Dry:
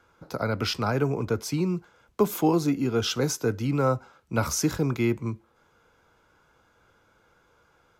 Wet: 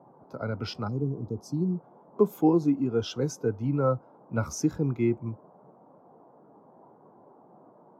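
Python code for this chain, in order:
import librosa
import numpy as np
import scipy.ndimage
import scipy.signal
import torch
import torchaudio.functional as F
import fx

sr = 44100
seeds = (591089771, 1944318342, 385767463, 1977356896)

y = fx.cheby1_bandstop(x, sr, low_hz=330.0, high_hz=4800.0, order=2, at=(0.87, 1.75), fade=0.02)
y = fx.dmg_noise_band(y, sr, seeds[0], low_hz=130.0, high_hz=980.0, level_db=-42.0)
y = fx.spectral_expand(y, sr, expansion=1.5)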